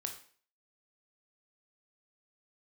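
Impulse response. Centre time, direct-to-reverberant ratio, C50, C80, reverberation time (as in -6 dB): 16 ms, 3.5 dB, 9.0 dB, 13.0 dB, 0.45 s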